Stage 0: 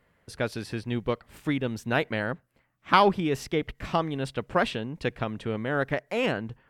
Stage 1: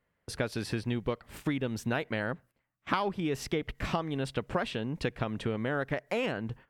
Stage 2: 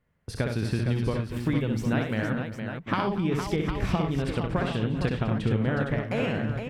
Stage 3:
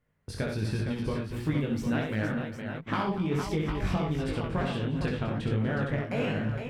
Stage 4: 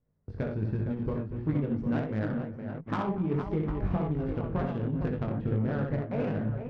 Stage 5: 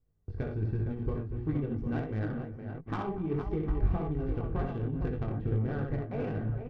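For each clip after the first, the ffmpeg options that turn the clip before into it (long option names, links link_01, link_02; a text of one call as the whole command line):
ffmpeg -i in.wav -af "agate=range=-15dB:threshold=-51dB:ratio=16:detection=peak,acompressor=threshold=-31dB:ratio=6,volume=3.5dB" out.wav
ffmpeg -i in.wav -filter_complex "[0:a]bass=frequency=250:gain=8,treble=frequency=4000:gain=-3,asplit=2[link_01][link_02];[link_02]aecho=0:1:64|98|240|392|462|756:0.596|0.282|0.178|0.133|0.447|0.355[link_03];[link_01][link_03]amix=inputs=2:normalize=0" out.wav
ffmpeg -i in.wav -filter_complex "[0:a]asplit=2[link_01][link_02];[link_02]volume=26dB,asoftclip=hard,volume=-26dB,volume=-9dB[link_03];[link_01][link_03]amix=inputs=2:normalize=0,flanger=delay=19:depth=2.4:speed=1.4,volume=-1.5dB" out.wav
ffmpeg -i in.wav -af "adynamicsmooth=sensitivity=1:basefreq=790" out.wav
ffmpeg -i in.wav -af "lowshelf=frequency=110:gain=9.5,aecho=1:1:2.6:0.4,volume=-4.5dB" out.wav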